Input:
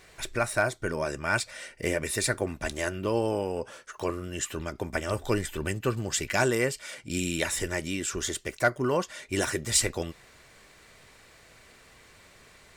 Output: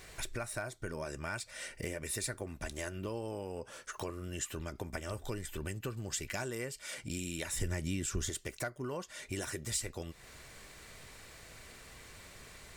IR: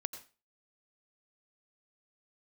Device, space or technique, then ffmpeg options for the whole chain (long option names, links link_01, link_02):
ASMR close-microphone chain: -filter_complex "[0:a]lowshelf=frequency=130:gain=6.5,acompressor=threshold=-39dB:ratio=4,highshelf=frequency=6100:gain=6,asettb=1/sr,asplit=3[link_01][link_02][link_03];[link_01]atrim=end=7.534[link_04];[link_02]atrim=start=7.53:end=8.3,asetpts=PTS-STARTPTS,afade=type=in:duration=0.004:curve=qsin,afade=type=out:start_time=0.766:duration=0.004:curve=qsin,bass=frequency=250:gain=9,treble=frequency=4000:gain=0[link_05];[link_03]atrim=start=8.296[link_06];[link_04][link_05]acrossfade=duration=0.004:curve1=hsin:curve2=qsin[link_07];[link_07][link_06]acrossfade=duration=0.004:curve1=qsin:curve2=hsin"